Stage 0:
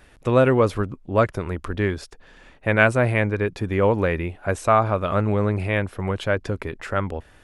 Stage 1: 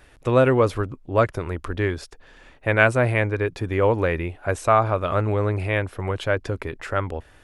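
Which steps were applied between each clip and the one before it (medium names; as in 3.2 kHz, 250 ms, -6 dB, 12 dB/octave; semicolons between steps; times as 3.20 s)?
peaking EQ 200 Hz -10.5 dB 0.24 oct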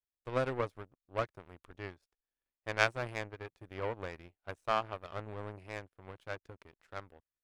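power-law waveshaper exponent 2; trim -6.5 dB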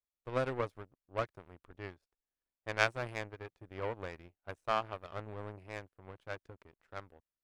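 tape noise reduction on one side only decoder only; trim -1 dB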